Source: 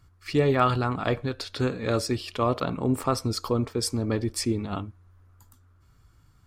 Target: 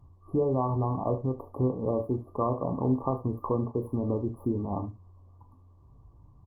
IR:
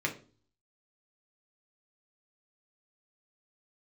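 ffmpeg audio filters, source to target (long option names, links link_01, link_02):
-filter_complex "[0:a]adynamicsmooth=sensitivity=1:basefreq=2600,equalizer=frequency=850:width_type=o:width=1.1:gain=3.5,acompressor=threshold=-33dB:ratio=2,aecho=1:1:23|39|74:0.266|0.266|0.2,asplit=2[link_01][link_02];[1:a]atrim=start_sample=2205,atrim=end_sample=3528[link_03];[link_02][link_03]afir=irnorm=-1:irlink=0,volume=-24dB[link_04];[link_01][link_04]amix=inputs=2:normalize=0,afftfilt=real='re*(1-between(b*sr/4096,1200,10000))':imag='im*(1-between(b*sr/4096,1200,10000))':win_size=4096:overlap=0.75,volume=2.5dB" -ar 48000 -c:a libopus -b:a 32k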